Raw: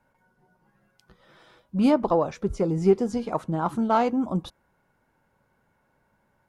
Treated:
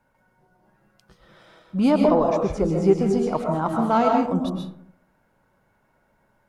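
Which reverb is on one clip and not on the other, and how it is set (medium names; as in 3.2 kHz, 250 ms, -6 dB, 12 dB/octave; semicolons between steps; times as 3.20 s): algorithmic reverb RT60 0.68 s, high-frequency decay 0.4×, pre-delay 90 ms, DRR 1 dB; trim +1 dB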